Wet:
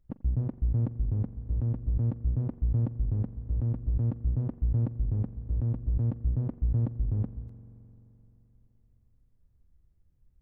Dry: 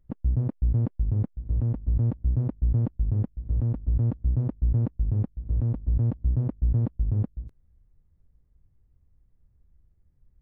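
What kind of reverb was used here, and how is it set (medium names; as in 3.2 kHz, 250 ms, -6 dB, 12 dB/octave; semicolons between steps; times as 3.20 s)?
spring tank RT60 3.4 s, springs 43 ms, chirp 45 ms, DRR 13.5 dB; trim -3.5 dB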